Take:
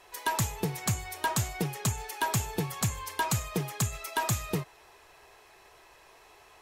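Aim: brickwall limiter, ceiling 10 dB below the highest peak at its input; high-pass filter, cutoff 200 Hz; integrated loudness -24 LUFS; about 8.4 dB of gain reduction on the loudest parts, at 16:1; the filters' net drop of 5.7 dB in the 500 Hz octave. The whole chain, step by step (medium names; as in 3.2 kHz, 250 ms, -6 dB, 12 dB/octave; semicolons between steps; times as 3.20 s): high-pass 200 Hz; peaking EQ 500 Hz -7.5 dB; compression 16:1, threshold -34 dBFS; trim +17.5 dB; peak limiter -12 dBFS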